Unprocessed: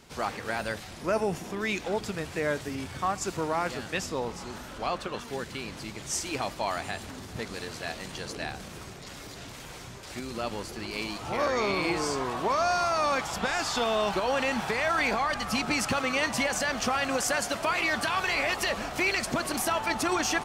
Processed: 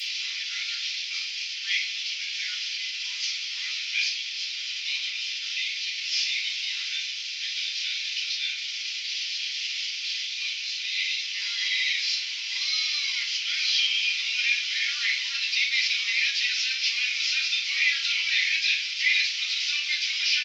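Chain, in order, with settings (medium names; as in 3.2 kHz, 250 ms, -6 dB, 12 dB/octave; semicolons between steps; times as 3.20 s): one-bit delta coder 32 kbps, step -31 dBFS; elliptic high-pass 2.7 kHz, stop band 80 dB; pitch shift -2 st; simulated room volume 240 m³, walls furnished, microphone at 6.9 m; trim +2 dB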